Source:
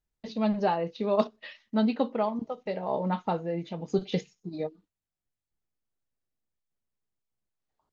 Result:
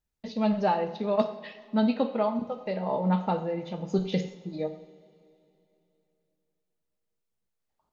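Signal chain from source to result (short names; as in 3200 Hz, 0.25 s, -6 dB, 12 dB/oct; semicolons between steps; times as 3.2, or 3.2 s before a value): 0.96–1.62 transient shaper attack -2 dB, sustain -6 dB; two-slope reverb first 0.64 s, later 3.2 s, from -18 dB, DRR 6 dB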